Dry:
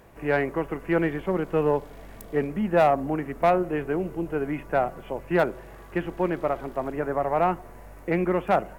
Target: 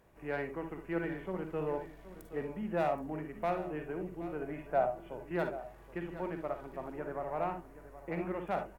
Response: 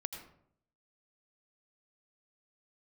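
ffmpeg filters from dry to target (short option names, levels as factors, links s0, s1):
-filter_complex "[0:a]asettb=1/sr,asplit=3[s0][s1][s2];[s0]atrim=end=4.414[s3];[s1]atrim=start=4.41:end=5.08,asetpts=PTS-STARTPTS,afade=t=in:d=0.004:c=qsin,afade=t=out:st=0.666:d=0.004:c=qsin,equalizer=f=660:t=o:w=0.49:g=9.5[s4];[s2]atrim=start=5.076[s5];[s3][s4]acrossfade=d=0.004:c1=hsin:c2=qsin[s6];[s6][s5]acrossfade=d=0.004:c1=qsin:c2=hsin,aecho=1:1:774:0.2[s7];[1:a]atrim=start_sample=2205,afade=t=out:st=0.19:d=0.01,atrim=end_sample=8820,asetrate=79380,aresample=44100[s8];[s7][s8]afir=irnorm=-1:irlink=0,volume=0.501"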